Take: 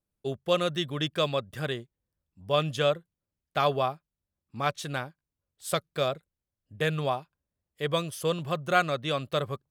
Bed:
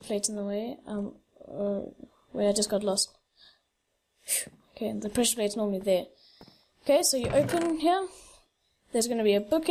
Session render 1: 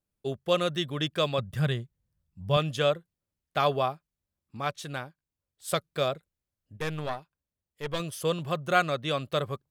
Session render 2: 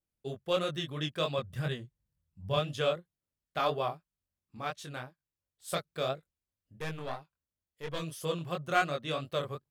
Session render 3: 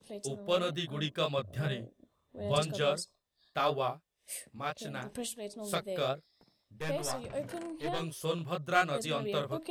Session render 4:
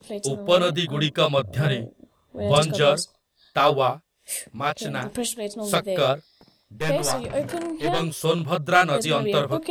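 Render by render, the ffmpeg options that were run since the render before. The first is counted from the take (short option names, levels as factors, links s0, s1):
-filter_complex "[0:a]asettb=1/sr,asplit=3[s0][s1][s2];[s0]atrim=end=1.384[s3];[s1]atrim=start=1.38:end=2.57,asetpts=PTS-STARTPTS,afade=t=in:d=0.004:c=qsin,afade=t=out:st=1.186:d=0.004:c=qsin,lowshelf=f=220:t=q:w=1.5:g=7.5[s4];[s2]atrim=start=2.566[s5];[s3][s4]acrossfade=d=0.004:c1=hsin:c2=qsin[s6];[s6][s5]acrossfade=d=0.004:c1=qsin:c2=hsin,asettb=1/sr,asplit=3[s7][s8][s9];[s7]atrim=end=6.774[s10];[s8]atrim=start=6.77:end=8,asetpts=PTS-STARTPTS,afade=t=in:d=0.004:c=qsin,afade=t=out:st=1.226:d=0.004:c=qsin,aeval=exprs='(tanh(14.1*val(0)+0.8)-tanh(0.8))/14.1':c=same[s11];[s9]atrim=start=7.996[s12];[s10][s11]acrossfade=d=0.004:c1=hsin:c2=qsin[s13];[s13][s12]acrossfade=d=0.004:c1=qsin:c2=hsin,asplit=3[s14][s15][s16];[s14]atrim=end=4.572[s17];[s15]atrim=start=4.568:end=5.682,asetpts=PTS-STARTPTS,volume=0.708[s18];[s16]atrim=start=5.678[s19];[s17][s18]acrossfade=d=0.004:c1=hsin:c2=hsin[s20];[s20][s19]acrossfade=d=0.004:c1=hsin:c2=hsin"
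-af "aeval=exprs='0.335*(cos(1*acos(clip(val(0)/0.335,-1,1)))-cos(1*PI/2))+0.0266*(cos(3*acos(clip(val(0)/0.335,-1,1)))-cos(3*PI/2))':c=same,flanger=delay=20:depth=5.2:speed=2.9"
-filter_complex "[1:a]volume=0.211[s0];[0:a][s0]amix=inputs=2:normalize=0"
-af "volume=3.76,alimiter=limit=0.708:level=0:latency=1"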